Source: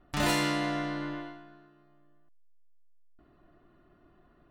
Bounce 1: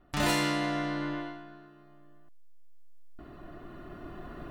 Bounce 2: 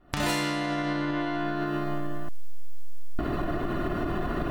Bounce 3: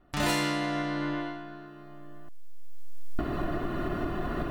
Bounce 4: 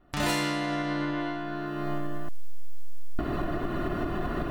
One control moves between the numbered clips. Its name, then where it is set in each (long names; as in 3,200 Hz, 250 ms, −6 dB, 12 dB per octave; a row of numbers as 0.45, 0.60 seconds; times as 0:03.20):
camcorder AGC, rising by: 5.3, 91, 14, 36 dB per second